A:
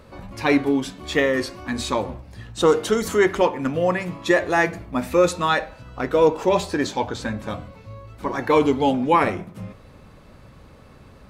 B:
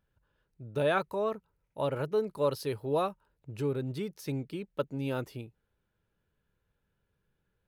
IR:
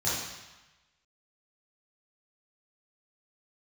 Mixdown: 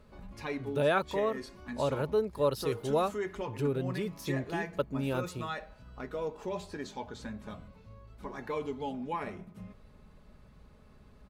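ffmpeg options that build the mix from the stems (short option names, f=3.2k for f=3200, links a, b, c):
-filter_complex "[0:a]lowshelf=f=120:g=8.5,aecho=1:1:4.8:0.43,acompressor=threshold=-28dB:ratio=1.5,volume=-14dB[a];[1:a]volume=0.5dB,asplit=2[b][c];[c]apad=whole_len=498238[d];[a][d]sidechaincompress=threshold=-29dB:ratio=8:attack=16:release=317[e];[e][b]amix=inputs=2:normalize=0"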